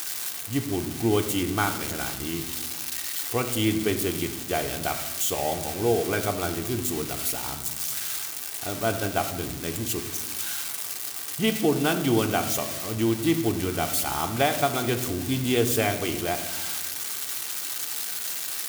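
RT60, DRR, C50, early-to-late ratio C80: 1.1 s, 5.0 dB, 10.5 dB, 12.5 dB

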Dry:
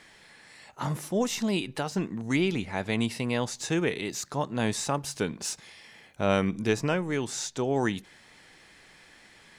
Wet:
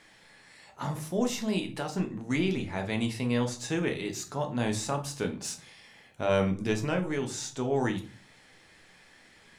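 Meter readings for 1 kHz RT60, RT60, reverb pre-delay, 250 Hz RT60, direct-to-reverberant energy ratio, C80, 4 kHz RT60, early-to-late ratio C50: 0.40 s, 0.40 s, 3 ms, 0.65 s, 4.0 dB, 17.5 dB, 0.25 s, 12.0 dB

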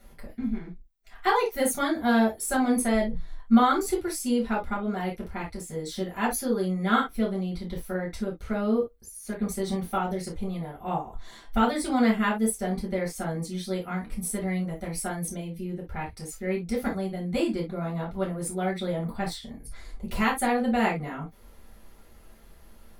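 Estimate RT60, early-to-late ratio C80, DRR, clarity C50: no single decay rate, 53.0 dB, -4.5 dB, 10.0 dB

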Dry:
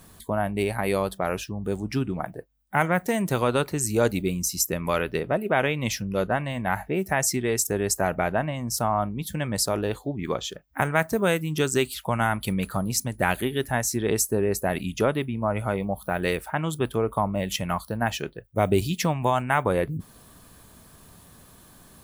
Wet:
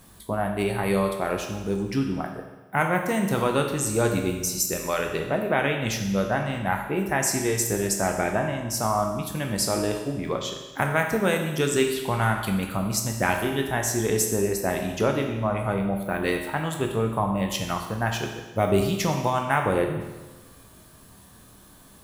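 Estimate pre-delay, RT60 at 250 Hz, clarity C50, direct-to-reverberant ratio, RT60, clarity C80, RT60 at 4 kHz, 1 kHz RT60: 11 ms, 1.2 s, 5.5 dB, 2.5 dB, 1.2 s, 7.5 dB, 1.2 s, 1.2 s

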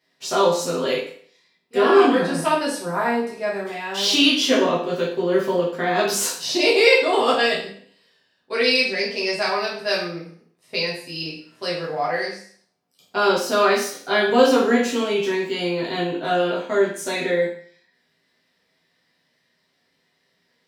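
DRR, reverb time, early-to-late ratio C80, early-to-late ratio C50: -6.0 dB, 0.55 s, 8.5 dB, 5.0 dB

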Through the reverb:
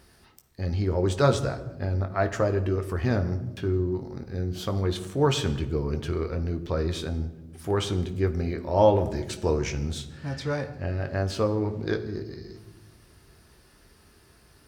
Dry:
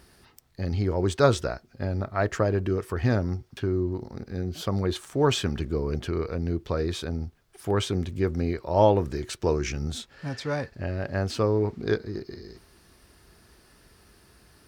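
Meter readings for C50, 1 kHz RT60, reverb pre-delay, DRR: 12.5 dB, 0.95 s, 13 ms, 6.5 dB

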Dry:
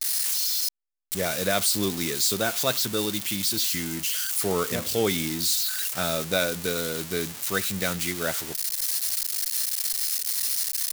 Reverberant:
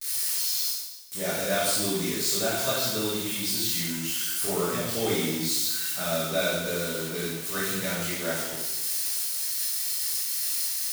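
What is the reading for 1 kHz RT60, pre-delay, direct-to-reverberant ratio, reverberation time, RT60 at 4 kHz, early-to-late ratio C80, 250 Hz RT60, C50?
1.1 s, 7 ms, -9.0 dB, 1.1 s, 1.0 s, 2.5 dB, 1.1 s, -1.0 dB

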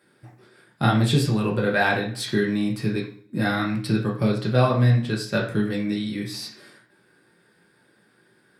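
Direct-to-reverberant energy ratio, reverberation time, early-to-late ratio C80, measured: -2.5 dB, 0.50 s, 12.0 dB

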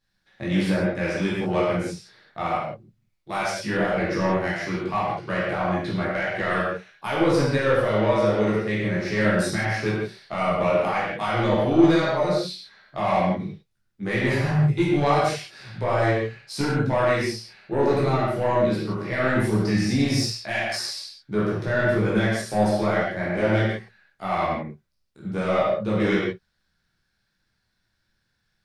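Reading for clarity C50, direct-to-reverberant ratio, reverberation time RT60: -0.5 dB, -8.5 dB, no single decay rate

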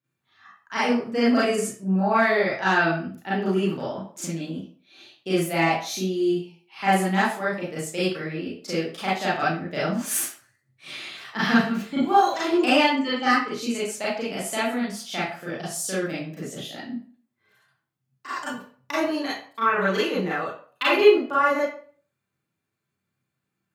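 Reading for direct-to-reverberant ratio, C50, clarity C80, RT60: -9.5 dB, 1.5 dB, 7.5 dB, 0.45 s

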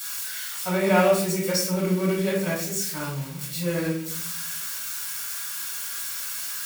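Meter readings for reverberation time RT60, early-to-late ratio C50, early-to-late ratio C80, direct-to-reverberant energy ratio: 0.60 s, 3.5 dB, 7.0 dB, -7.5 dB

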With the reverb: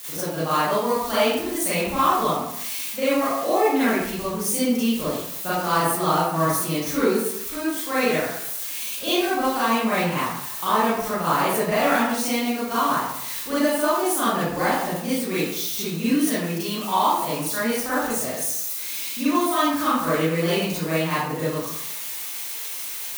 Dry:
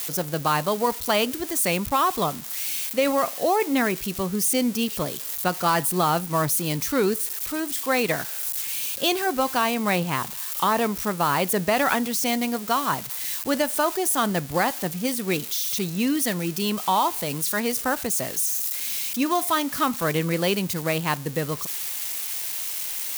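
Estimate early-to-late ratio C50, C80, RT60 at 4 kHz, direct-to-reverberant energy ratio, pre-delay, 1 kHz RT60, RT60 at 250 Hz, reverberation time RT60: -3.0 dB, 2.5 dB, 0.50 s, -11.5 dB, 33 ms, 0.85 s, 0.75 s, 0.80 s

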